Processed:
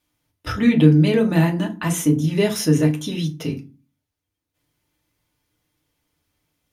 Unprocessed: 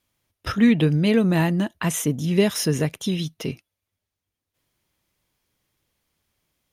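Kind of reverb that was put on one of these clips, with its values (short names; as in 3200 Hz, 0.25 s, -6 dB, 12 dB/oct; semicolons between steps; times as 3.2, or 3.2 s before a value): FDN reverb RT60 0.31 s, low-frequency decay 1.6×, high-frequency decay 0.65×, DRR 1 dB; gain -1.5 dB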